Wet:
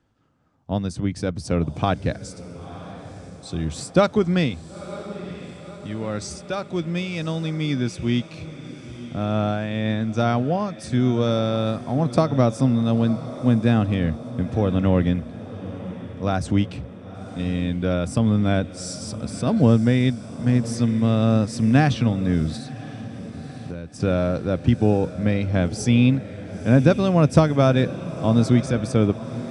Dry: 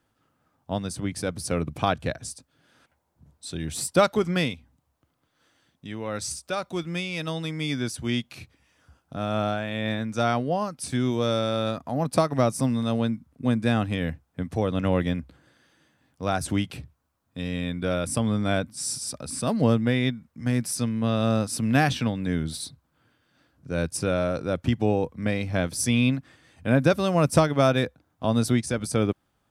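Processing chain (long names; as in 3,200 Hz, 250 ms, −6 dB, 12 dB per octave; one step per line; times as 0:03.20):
low-pass filter 7,800 Hz 24 dB per octave
feedback delay with all-pass diffusion 983 ms, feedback 57%, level −14 dB
0:22.56–0:24.00: downward compressor 16 to 1, threshold −34 dBFS, peak gain reduction 14 dB
low-shelf EQ 460 Hz +8 dB
level −1 dB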